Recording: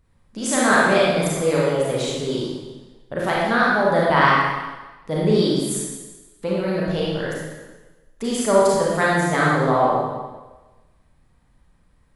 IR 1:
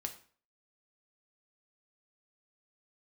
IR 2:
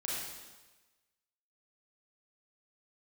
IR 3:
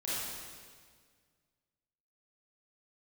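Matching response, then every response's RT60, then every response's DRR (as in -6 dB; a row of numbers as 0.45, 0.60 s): 2; 0.45, 1.2, 1.8 s; 4.5, -6.0, -10.0 dB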